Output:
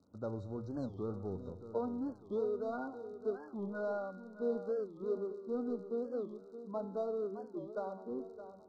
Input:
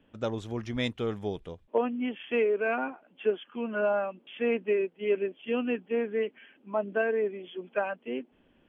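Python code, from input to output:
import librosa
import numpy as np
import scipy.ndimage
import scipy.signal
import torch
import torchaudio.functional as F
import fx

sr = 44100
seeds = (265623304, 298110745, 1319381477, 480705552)

p1 = scipy.signal.sosfilt(scipy.signal.butter(4, 63.0, 'highpass', fs=sr, output='sos'), x)
p2 = fx.tilt_eq(p1, sr, slope=-2.0)
p3 = fx.hum_notches(p2, sr, base_hz=60, count=2)
p4 = np.clip(10.0 ** (32.5 / 20.0) * p3, -1.0, 1.0) / 10.0 ** (32.5 / 20.0)
p5 = p3 + (p4 * librosa.db_to_amplitude(-4.5))
p6 = fx.comb_fb(p5, sr, f0_hz=95.0, decay_s=1.2, harmonics='all', damping=0.0, mix_pct=70)
p7 = fx.dmg_crackle(p6, sr, seeds[0], per_s=54.0, level_db=-46.0)
p8 = fx.brickwall_bandstop(p7, sr, low_hz=1500.0, high_hz=3700.0)
p9 = fx.air_absorb(p8, sr, metres=100.0)
p10 = p9 + fx.echo_feedback(p9, sr, ms=617, feedback_pct=43, wet_db=-12.0, dry=0)
p11 = fx.record_warp(p10, sr, rpm=45.0, depth_cents=250.0)
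y = p11 * librosa.db_to_amplitude(-3.5)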